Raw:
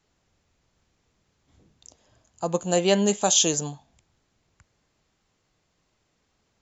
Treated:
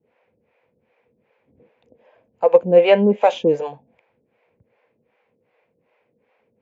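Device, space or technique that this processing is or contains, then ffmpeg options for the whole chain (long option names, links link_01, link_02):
guitar amplifier with harmonic tremolo: -filter_complex "[0:a]acrossover=split=450[link_01][link_02];[link_01]aeval=exprs='val(0)*(1-1/2+1/2*cos(2*PI*2.6*n/s))':channel_layout=same[link_03];[link_02]aeval=exprs='val(0)*(1-1/2-1/2*cos(2*PI*2.6*n/s))':channel_layout=same[link_04];[link_03][link_04]amix=inputs=2:normalize=0,asoftclip=type=tanh:threshold=-16.5dB,highpass=110,equalizer=frequency=230:width_type=q:width=4:gain=9,equalizer=frequency=490:width_type=q:width=4:gain=10,equalizer=frequency=1200:width_type=q:width=4:gain=-8,equalizer=frequency=2400:width_type=q:width=4:gain=9,lowpass=frequency=3600:width=0.5412,lowpass=frequency=3600:width=1.3066,equalizer=frequency=125:width_type=o:width=1:gain=4,equalizer=frequency=500:width_type=o:width=1:gain=10,equalizer=frequency=1000:width_type=o:width=1:gain=9,equalizer=frequency=2000:width_type=o:width=1:gain=6,equalizer=frequency=4000:width_type=o:width=1:gain=-6,volume=1dB"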